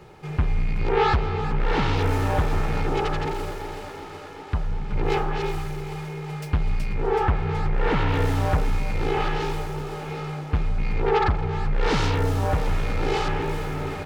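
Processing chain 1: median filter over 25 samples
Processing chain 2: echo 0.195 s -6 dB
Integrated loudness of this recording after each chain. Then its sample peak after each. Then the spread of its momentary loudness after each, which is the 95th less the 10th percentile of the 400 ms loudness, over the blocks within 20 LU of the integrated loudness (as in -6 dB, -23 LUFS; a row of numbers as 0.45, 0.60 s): -26.5, -24.5 LUFS; -11.5, -9.5 dBFS; 10, 10 LU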